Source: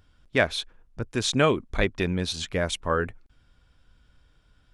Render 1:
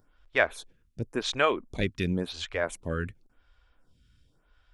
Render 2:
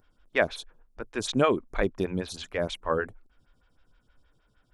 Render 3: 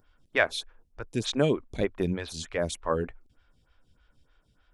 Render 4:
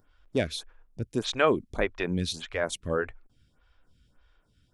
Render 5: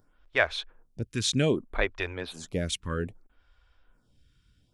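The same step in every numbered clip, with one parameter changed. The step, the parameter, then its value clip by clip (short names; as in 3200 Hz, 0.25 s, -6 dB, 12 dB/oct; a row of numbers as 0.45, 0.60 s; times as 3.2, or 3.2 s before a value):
photocell phaser, rate: 0.92, 6.4, 3.3, 1.7, 0.63 Hz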